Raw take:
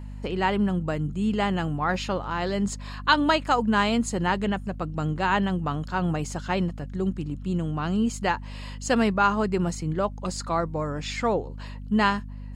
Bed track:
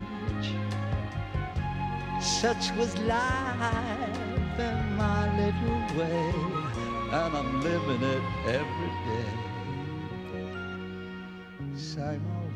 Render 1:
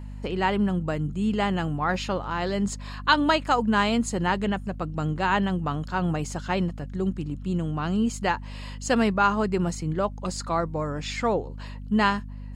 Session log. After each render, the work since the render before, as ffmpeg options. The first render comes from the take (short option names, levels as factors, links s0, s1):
-af anull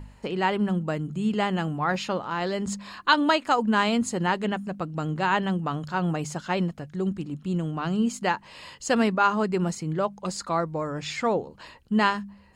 -af "bandreject=f=50:t=h:w=4,bandreject=f=100:t=h:w=4,bandreject=f=150:t=h:w=4,bandreject=f=200:t=h:w=4,bandreject=f=250:t=h:w=4"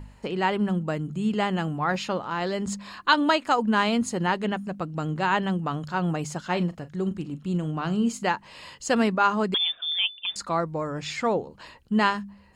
-filter_complex "[0:a]asettb=1/sr,asplit=3[s0][s1][s2];[s0]atrim=end=3.574[s3];[s1]atrim=start=3.57:end=4.66,asetpts=PTS-STARTPTS,afade=t=in:d=0.004:c=qsin,afade=t=out:st=1.086:d=0.004:c=qsin,bandreject=f=7600:w=12[s4];[s2]atrim=start=4.656[s5];[s3][s4]acrossfade=d=0.004:c1=hsin:c2=qsin[s6];[s6][s5]acrossfade=d=0.004:c1=qsin:c2=hsin,asettb=1/sr,asplit=3[s7][s8][s9];[s7]atrim=end=6.454[s10];[s8]atrim=start=6.45:end=8.27,asetpts=PTS-STARTPTS,afade=t=in:d=0.004:c=qsin,afade=t=out:st=1.816:d=0.004:c=qsin,asplit=2[s11][s12];[s12]adelay=39,volume=0.2[s13];[s11][s13]amix=inputs=2:normalize=0,atrim=end_sample=80262[s14];[s9]atrim=start=8.266[s15];[s10][s14]acrossfade=d=0.004:c1=hsin:c2=qsin[s16];[s16][s15]acrossfade=d=0.004:c1=qsin:c2=hsin,asettb=1/sr,asplit=3[s17][s18][s19];[s17]atrim=end=9.544[s20];[s18]atrim=start=9.54:end=10.36,asetpts=PTS-STARTPTS,afade=t=in:d=0.004:c=qsin,afade=t=out:st=0.816:d=0.004:c=qsin,lowpass=f=3100:t=q:w=0.5098,lowpass=f=3100:t=q:w=0.6013,lowpass=f=3100:t=q:w=0.9,lowpass=f=3100:t=q:w=2.563,afreqshift=-3700[s21];[s19]atrim=start=10.356[s22];[s20][s21]acrossfade=d=0.004:c1=hsin:c2=qsin[s23];[s23][s22]acrossfade=d=0.004:c1=qsin:c2=hsin"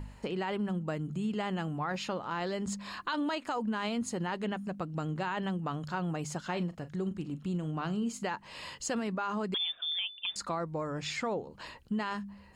-af "alimiter=limit=0.133:level=0:latency=1:release=17,acompressor=threshold=0.0158:ratio=2"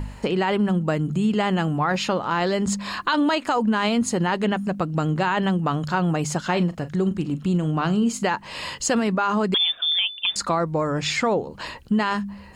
-af "volume=3.98"